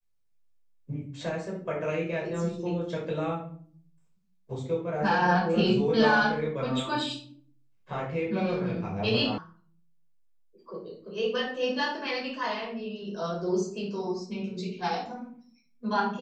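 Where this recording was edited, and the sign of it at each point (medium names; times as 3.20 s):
9.38 s: sound stops dead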